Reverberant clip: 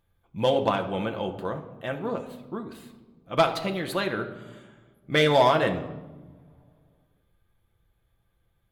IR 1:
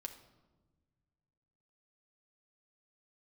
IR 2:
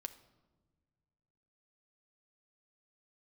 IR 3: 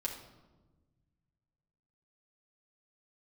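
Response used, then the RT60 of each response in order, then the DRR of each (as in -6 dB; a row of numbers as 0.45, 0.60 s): 1; 1.3 s, not exponential, 1.2 s; 3.0, 8.0, -3.5 dB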